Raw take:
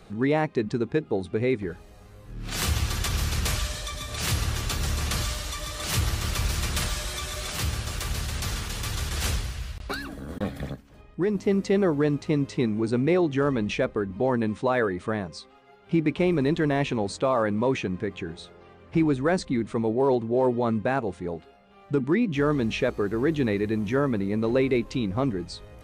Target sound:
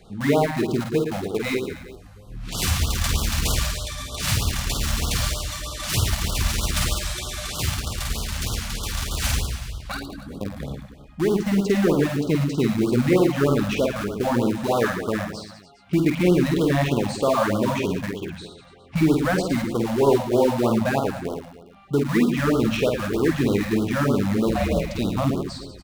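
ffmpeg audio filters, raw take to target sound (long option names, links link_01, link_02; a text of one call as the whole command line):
ffmpeg -i in.wav -filter_complex "[0:a]asettb=1/sr,asplit=3[link_01][link_02][link_03];[link_01]atrim=end=1.294[link_04];[link_02]atrim=start=1.29:end=1.69,asetpts=PTS-STARTPTS,afade=type=in:duration=0.004:curve=qsin,afade=type=out:start_time=0.396:duration=0.004:curve=qsin,bass=frequency=250:gain=-8,treble=frequency=4000:gain=10[link_05];[link_03]atrim=start=1.686[link_06];[link_04][link_05]acrossfade=duration=0.004:curve1=hsin:curve2=qsin[link_07];[link_07][link_06]acrossfade=duration=0.004:curve1=qsin:curve2=hsin,asettb=1/sr,asplit=3[link_08][link_09][link_10];[link_08]atrim=end=9.974[link_11];[link_09]atrim=start=9.97:end=10.58,asetpts=PTS-STARTPTS,afade=type=in:duration=0.004:curve=qsin,afade=type=out:start_time=0.606:duration=0.004:curve=qsin,acrossover=split=150|880[link_12][link_13][link_14];[link_12]acompressor=threshold=-37dB:ratio=4[link_15];[link_13]acompressor=threshold=-31dB:ratio=4[link_16];[link_14]acompressor=threshold=-51dB:ratio=4[link_17];[link_15][link_16][link_17]amix=inputs=3:normalize=0[link_18];[link_10]atrim=start=10.576[link_19];[link_11][link_18]acrossfade=duration=0.004:curve1=hsin:curve2=qsin[link_20];[link_20][link_19]acrossfade=duration=0.004:curve1=qsin:curve2=hsin,asplit=2[link_21][link_22];[link_22]acrusher=bits=3:mix=0:aa=0.000001,volume=-9.5dB[link_23];[link_21][link_23]amix=inputs=2:normalize=0,asettb=1/sr,asplit=3[link_24][link_25][link_26];[link_24]atrim=end=24.494[link_27];[link_25]atrim=start=24.49:end=24.99,asetpts=PTS-STARTPTS,afade=type=in:duration=0.004:curve=qsin,afade=type=out:start_time=0.496:duration=0.004:curve=qsin,aeval=exprs='val(0)*sin(2*PI*190*n/s)':channel_layout=same[link_28];[link_26]atrim=start=24.986[link_29];[link_27][link_28]acrossfade=duration=0.004:curve1=hsin:curve2=qsin[link_30];[link_30][link_29]acrossfade=duration=0.004:curve1=qsin:curve2=hsin,aecho=1:1:50|112.5|190.6|288.3|410.4:0.631|0.398|0.251|0.158|0.1,afftfilt=real='re*(1-between(b*sr/1024,340*pow(2100/340,0.5+0.5*sin(2*PI*3.2*pts/sr))/1.41,340*pow(2100/340,0.5+0.5*sin(2*PI*3.2*pts/sr))*1.41))':imag='im*(1-between(b*sr/1024,340*pow(2100/340,0.5+0.5*sin(2*PI*3.2*pts/sr))/1.41,340*pow(2100/340,0.5+0.5*sin(2*PI*3.2*pts/sr))*1.41))':win_size=1024:overlap=0.75" out.wav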